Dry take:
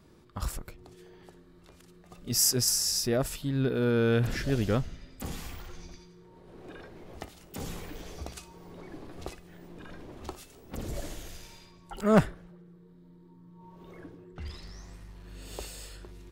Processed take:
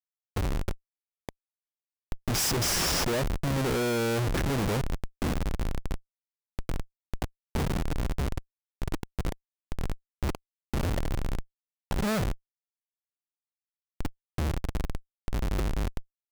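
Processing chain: tilt shelf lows +5 dB, about 1.4 kHz; Schmitt trigger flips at -34.5 dBFS; trim +3 dB

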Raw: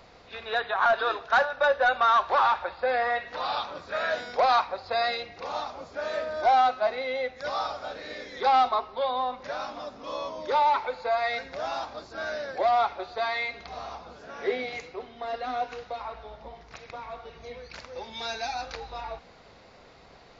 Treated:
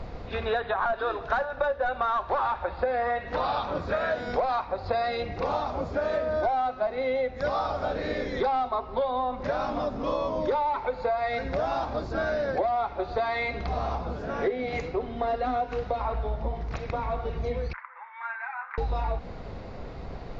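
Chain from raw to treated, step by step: 17.73–18.78 s: elliptic band-pass 990–2100 Hz, stop band 80 dB; tilt EQ -3.5 dB/octave; compression 10:1, threshold -32 dBFS, peak gain reduction 16 dB; trim +8 dB

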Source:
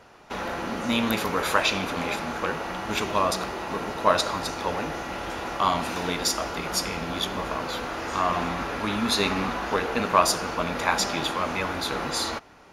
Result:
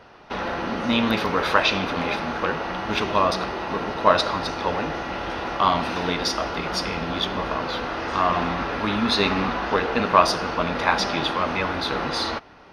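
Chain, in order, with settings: Savitzky-Golay filter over 15 samples; band-stop 2.3 kHz, Q 26; trim +3.5 dB

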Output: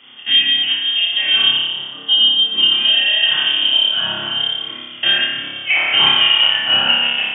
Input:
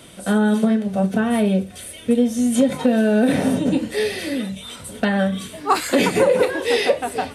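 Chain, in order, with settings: chunks repeated in reverse 116 ms, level -9 dB; level-controlled noise filter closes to 2.2 kHz, open at -12 dBFS; flutter echo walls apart 5 m, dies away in 1.1 s; frequency inversion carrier 3.4 kHz; high-pass 120 Hz 24 dB/octave; trim -1 dB

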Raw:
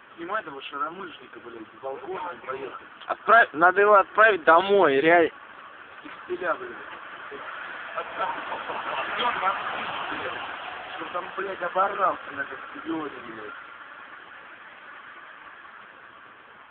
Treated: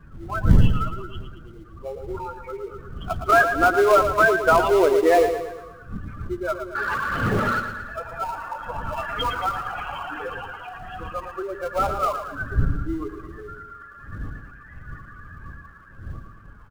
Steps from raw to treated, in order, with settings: spectral contrast enhancement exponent 2.3; wind noise 100 Hz -29 dBFS; 6.75–7.60 s: overdrive pedal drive 24 dB, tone 2.7 kHz, clips at -12 dBFS; in parallel at -11 dB: sample-rate reducer 1.7 kHz, jitter 20%; on the sum: spectral noise reduction 8 dB; on a send: feedback delay 113 ms, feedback 50%, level -8.5 dB

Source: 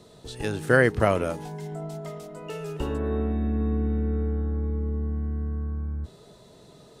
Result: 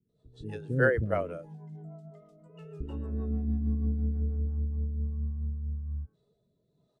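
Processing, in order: rotary cabinet horn 6.3 Hz, later 1.1 Hz, at 4.14 s; bands offset in time lows, highs 90 ms, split 370 Hz; spectral contrast expander 1.5:1; trim -2 dB

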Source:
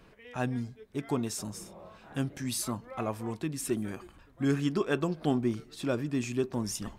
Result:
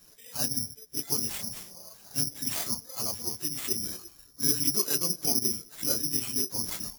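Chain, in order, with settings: phase randomisation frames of 50 ms; careless resampling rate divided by 8×, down none, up zero stuff; trim -7.5 dB

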